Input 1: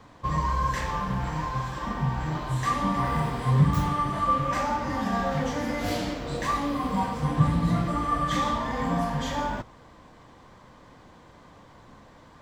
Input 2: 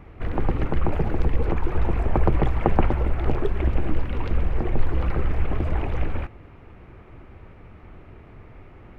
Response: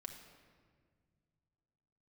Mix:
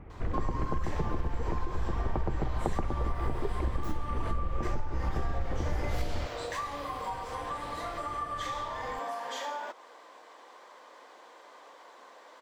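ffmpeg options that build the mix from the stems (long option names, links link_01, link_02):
-filter_complex "[0:a]highpass=frequency=420:width=0.5412,highpass=frequency=420:width=1.3066,acompressor=threshold=-36dB:ratio=4,adelay=100,volume=1.5dB[link_01];[1:a]lowpass=frequency=1500:poles=1,volume=-3dB[link_02];[link_01][link_02]amix=inputs=2:normalize=0,acompressor=threshold=-25dB:ratio=10"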